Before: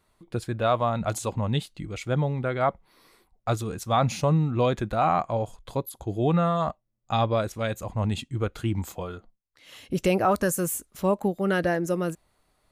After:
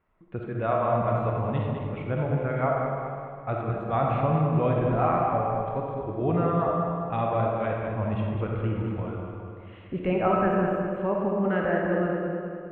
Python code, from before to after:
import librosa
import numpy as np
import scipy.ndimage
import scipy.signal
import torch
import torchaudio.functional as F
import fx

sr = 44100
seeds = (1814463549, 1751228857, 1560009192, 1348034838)

y = scipy.signal.sosfilt(scipy.signal.cheby2(4, 40, 4900.0, 'lowpass', fs=sr, output='sos'), x)
y = fx.echo_feedback(y, sr, ms=205, feedback_pct=51, wet_db=-7)
y = fx.rev_freeverb(y, sr, rt60_s=2.0, hf_ratio=0.35, predelay_ms=10, drr_db=-0.5)
y = y * 10.0 ** (-4.5 / 20.0)